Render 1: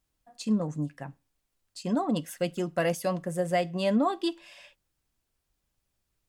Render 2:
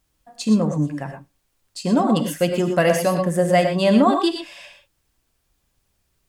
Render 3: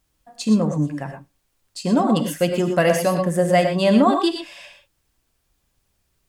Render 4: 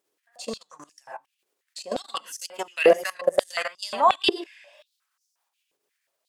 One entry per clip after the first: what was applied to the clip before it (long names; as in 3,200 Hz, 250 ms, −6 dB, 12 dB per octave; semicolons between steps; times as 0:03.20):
reverb whose tail is shaped and stops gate 140 ms rising, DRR 5 dB; level +9 dB
no processing that can be heard
output level in coarse steps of 19 dB; tape wow and flutter 64 cents; high-pass on a step sequencer 5.6 Hz 410–5,700 Hz